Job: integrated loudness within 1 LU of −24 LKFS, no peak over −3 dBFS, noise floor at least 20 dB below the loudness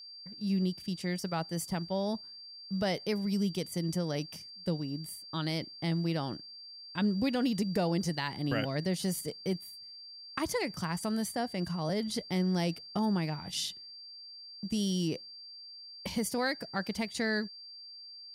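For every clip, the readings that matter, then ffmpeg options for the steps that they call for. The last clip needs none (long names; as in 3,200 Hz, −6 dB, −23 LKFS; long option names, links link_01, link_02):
interfering tone 4,700 Hz; level of the tone −46 dBFS; integrated loudness −33.5 LKFS; sample peak −18.5 dBFS; target loudness −24.0 LKFS
→ -af "bandreject=frequency=4700:width=30"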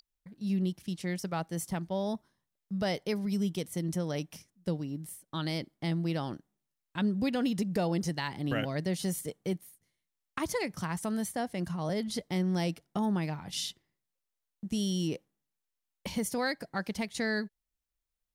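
interfering tone none found; integrated loudness −33.5 LKFS; sample peak −18.5 dBFS; target loudness −24.0 LKFS
→ -af "volume=9.5dB"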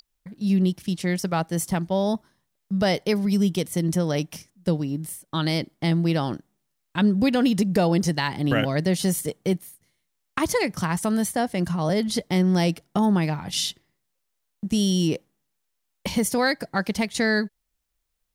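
integrated loudness −24.0 LKFS; sample peak −9.0 dBFS; background noise floor −77 dBFS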